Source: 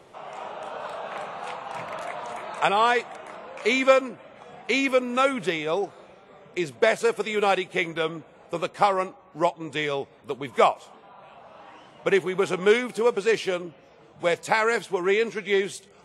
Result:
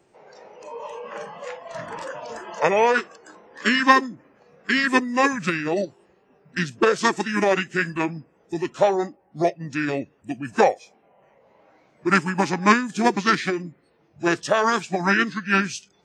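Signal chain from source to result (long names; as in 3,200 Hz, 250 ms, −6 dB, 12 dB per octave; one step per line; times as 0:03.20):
high-shelf EQ 6,800 Hz +6 dB
formants moved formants −5 semitones
noise reduction from a noise print of the clip's start 12 dB
level +2.5 dB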